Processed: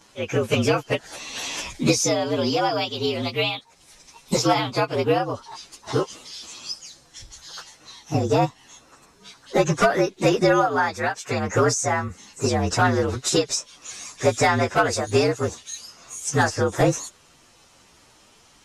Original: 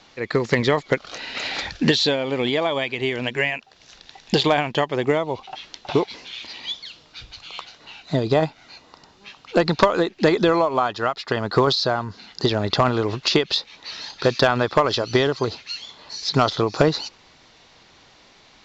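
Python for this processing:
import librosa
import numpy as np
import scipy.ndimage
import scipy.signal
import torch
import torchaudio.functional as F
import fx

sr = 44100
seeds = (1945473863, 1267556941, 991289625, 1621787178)

y = fx.partial_stretch(x, sr, pct=115)
y = F.gain(torch.from_numpy(y), 2.0).numpy()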